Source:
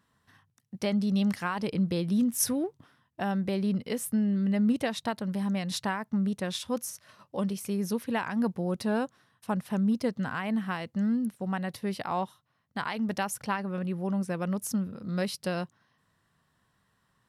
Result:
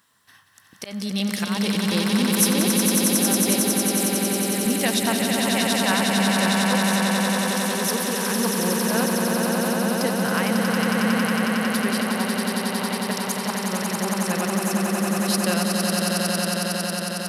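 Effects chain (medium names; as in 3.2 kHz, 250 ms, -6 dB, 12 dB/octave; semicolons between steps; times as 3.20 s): tilt EQ +3 dB/octave; slow attack 179 ms; 3.60–4.66 s: static phaser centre 660 Hz, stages 6; on a send: echo with a slow build-up 91 ms, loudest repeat 8, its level -4.5 dB; on the sum: trim +6 dB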